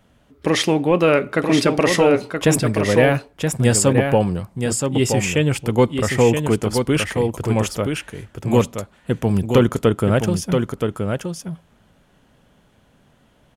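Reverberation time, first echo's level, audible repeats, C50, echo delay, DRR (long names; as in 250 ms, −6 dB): no reverb audible, −5.5 dB, 1, no reverb audible, 974 ms, no reverb audible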